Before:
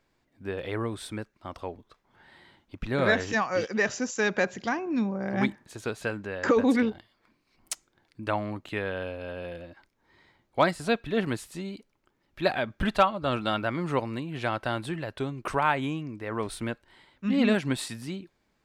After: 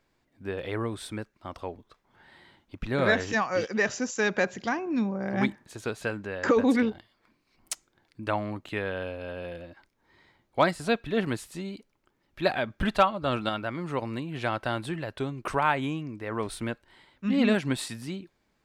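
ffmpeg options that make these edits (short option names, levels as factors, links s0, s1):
-filter_complex "[0:a]asplit=3[s0][s1][s2];[s0]atrim=end=13.492[s3];[s1]atrim=start=13.488:end=14.022,asetpts=PTS-STARTPTS,volume=0.668[s4];[s2]atrim=start=14.018[s5];[s3][s4]acrossfade=d=0.004:c1=hsin:c2=hsin[s6];[s6][s5]acrossfade=d=0.004:c1=hsin:c2=hsin"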